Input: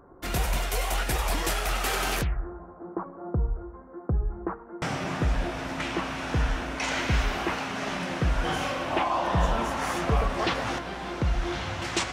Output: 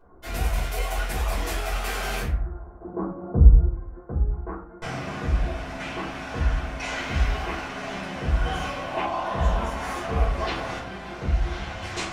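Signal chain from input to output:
0:02.81–0:03.67: low-shelf EQ 490 Hz +12 dB
rectangular room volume 240 cubic metres, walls furnished, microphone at 5 metres
level −11.5 dB

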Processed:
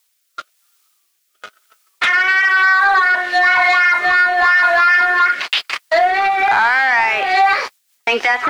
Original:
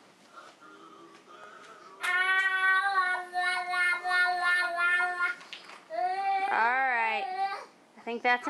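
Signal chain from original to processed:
low-pass filter 4,600 Hz 12 dB per octave
noise gate −45 dBFS, range −36 dB
treble cut that deepens with the level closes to 1,600 Hz, closed at −25.5 dBFS
spectral tilt +5.5 dB per octave
downward compressor 5 to 1, threshold −33 dBFS, peak gain reduction 11 dB
leveller curve on the samples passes 3
background noise violet −66 dBFS
rotating-speaker cabinet horn 1 Hz, later 6.3 Hz, at 0:07.10
mid-hump overdrive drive 8 dB, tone 2,300 Hz, clips at −14 dBFS
boost into a limiter +22 dB
level −5 dB

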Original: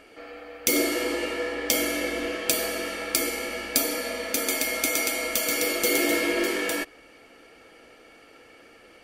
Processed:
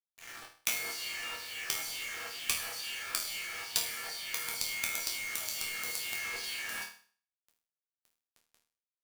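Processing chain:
auto-filter high-pass saw down 2.2 Hz 900–5,500 Hz
log-companded quantiser 2 bits
resonators tuned to a chord D#2 major, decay 0.44 s

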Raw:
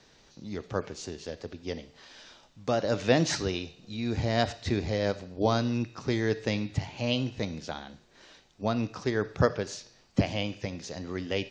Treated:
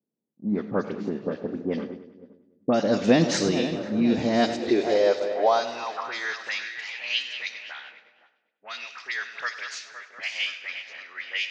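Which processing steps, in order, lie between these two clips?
feedback delay that plays each chunk backwards 258 ms, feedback 72%, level −11.5 dB
noise gate −43 dBFS, range −32 dB
low-pass that shuts in the quiet parts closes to 450 Hz, open at −24 dBFS
in parallel at +1.5 dB: downward compressor, threshold −34 dBFS, peak gain reduction 16 dB
on the sum: high-pass filter sweep 210 Hz → 2,000 Hz, 0:04.13–0:06.81
all-pass dispersion highs, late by 47 ms, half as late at 2,100 Hz
on a send: echo with a time of its own for lows and highs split 500 Hz, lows 161 ms, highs 100 ms, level −15 dB

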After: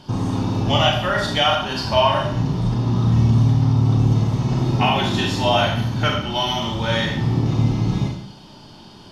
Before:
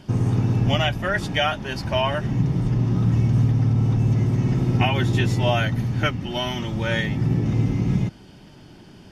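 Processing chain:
octave-band graphic EQ 1,000/2,000/4,000 Hz +9/−6/+11 dB
four-comb reverb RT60 0.62 s, combs from 27 ms, DRR 0 dB
level −1.5 dB

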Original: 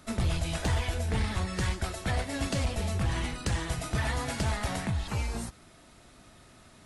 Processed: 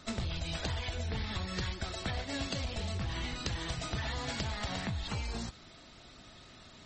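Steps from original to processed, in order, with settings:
parametric band 3,900 Hz +7 dB 0.88 octaves
downward compressor 10 to 1, threshold −32 dBFS, peak gain reduction 9 dB
MP3 32 kbit/s 44,100 Hz

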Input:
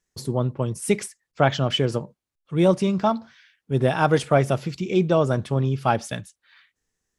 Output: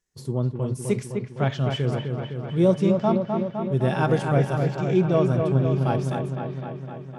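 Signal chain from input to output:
harmonic and percussive parts rebalanced percussive −10 dB
on a send: delay with a low-pass on its return 255 ms, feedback 70%, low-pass 2,700 Hz, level −5 dB

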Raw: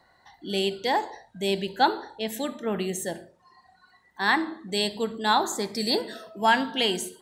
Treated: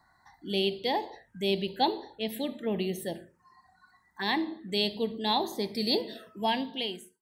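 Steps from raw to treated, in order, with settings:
fade-out on the ending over 0.85 s
phaser swept by the level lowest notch 480 Hz, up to 1,400 Hz, full sweep at −27 dBFS
level −1 dB

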